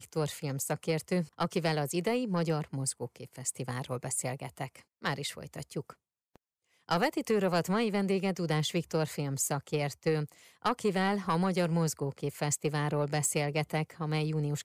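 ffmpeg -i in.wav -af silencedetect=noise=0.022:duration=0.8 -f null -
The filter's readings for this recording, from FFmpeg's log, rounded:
silence_start: 5.90
silence_end: 6.89 | silence_duration: 0.99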